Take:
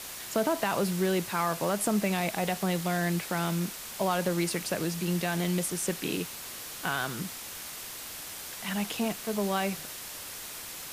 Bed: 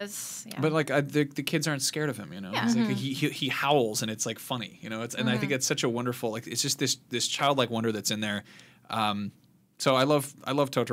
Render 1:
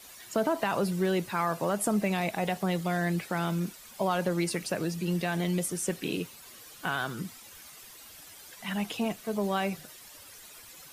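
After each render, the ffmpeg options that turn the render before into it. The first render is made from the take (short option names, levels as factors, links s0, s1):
-af "afftdn=nr=12:nf=-41"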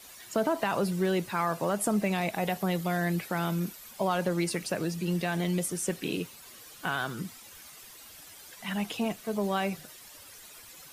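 -filter_complex "[0:a]asettb=1/sr,asplit=3[s0][s1][s2];[s0]atrim=end=2.344[s3];[s1]atrim=start=2.34:end=3.93,asetpts=PTS-STARTPTS,afade=t=in:d=0.004:c=qsin,afade=t=out:st=1.586:d=0.004:c=qsin,equalizer=f=12000:w=8:g=11.5[s4];[s2]atrim=start=3.926[s5];[s3][s4]acrossfade=d=0.004:c1=hsin:c2=qsin[s6];[s6][s5]acrossfade=d=0.004:c1=qsin:c2=hsin"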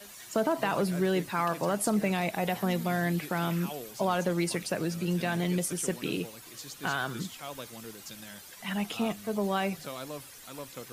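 -filter_complex "[1:a]volume=0.141[s0];[0:a][s0]amix=inputs=2:normalize=0"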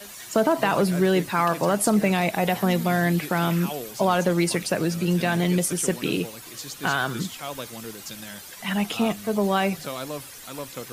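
-af "volume=2.24"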